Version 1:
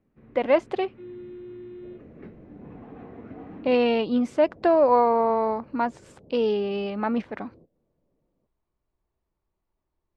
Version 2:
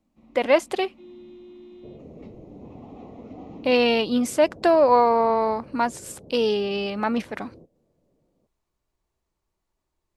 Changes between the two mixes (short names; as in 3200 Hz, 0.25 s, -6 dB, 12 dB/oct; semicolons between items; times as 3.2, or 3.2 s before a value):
first sound: add fixed phaser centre 430 Hz, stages 6; second sound +5.0 dB; master: remove tape spacing loss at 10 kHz 26 dB